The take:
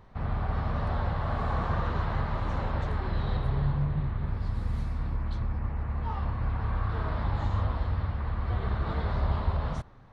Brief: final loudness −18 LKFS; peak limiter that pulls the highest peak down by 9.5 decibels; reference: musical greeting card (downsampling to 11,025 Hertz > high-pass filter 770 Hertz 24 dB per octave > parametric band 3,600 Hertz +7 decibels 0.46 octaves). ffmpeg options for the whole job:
ffmpeg -i in.wav -af "alimiter=level_in=1.5dB:limit=-24dB:level=0:latency=1,volume=-1.5dB,aresample=11025,aresample=44100,highpass=frequency=770:width=0.5412,highpass=frequency=770:width=1.3066,equalizer=frequency=3600:width_type=o:width=0.46:gain=7,volume=26dB" out.wav

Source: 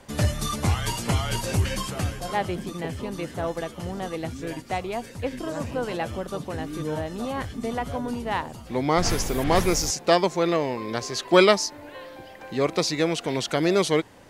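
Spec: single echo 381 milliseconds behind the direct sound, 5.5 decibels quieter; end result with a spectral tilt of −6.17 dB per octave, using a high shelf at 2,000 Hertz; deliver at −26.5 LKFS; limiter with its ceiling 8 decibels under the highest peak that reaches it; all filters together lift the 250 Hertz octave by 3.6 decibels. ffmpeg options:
ffmpeg -i in.wav -af "equalizer=frequency=250:width_type=o:gain=5.5,highshelf=frequency=2000:gain=-7.5,alimiter=limit=-12.5dB:level=0:latency=1,aecho=1:1:381:0.531,volume=-1dB" out.wav

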